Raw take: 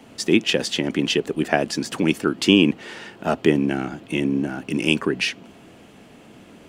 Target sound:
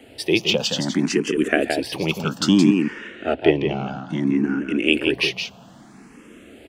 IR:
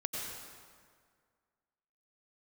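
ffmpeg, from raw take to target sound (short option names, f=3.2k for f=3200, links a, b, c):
-filter_complex "[0:a]asplit=3[a][b][c];[a]afade=t=out:st=2.79:d=0.02[d];[b]lowpass=4.2k,afade=t=in:st=2.79:d=0.02,afade=t=out:st=4.92:d=0.02[e];[c]afade=t=in:st=4.92:d=0.02[f];[d][e][f]amix=inputs=3:normalize=0,aecho=1:1:169:0.531,asplit=2[g][h];[h]afreqshift=0.61[i];[g][i]amix=inputs=2:normalize=1,volume=3dB"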